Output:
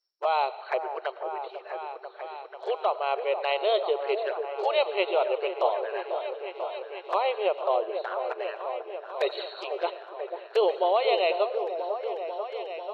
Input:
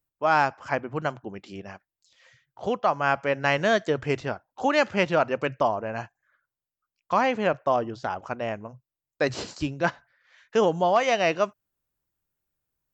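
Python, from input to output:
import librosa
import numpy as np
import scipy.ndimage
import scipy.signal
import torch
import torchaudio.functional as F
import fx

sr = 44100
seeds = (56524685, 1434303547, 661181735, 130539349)

y = fx.freq_compress(x, sr, knee_hz=3700.0, ratio=4.0)
y = fx.env_flanger(y, sr, rest_ms=10.9, full_db=-23.0)
y = fx.brickwall_highpass(y, sr, low_hz=350.0)
y = fx.echo_opening(y, sr, ms=492, hz=750, octaves=1, feedback_pct=70, wet_db=-6)
y = fx.rev_freeverb(y, sr, rt60_s=1.0, hf_ratio=0.95, predelay_ms=60, drr_db=15.5)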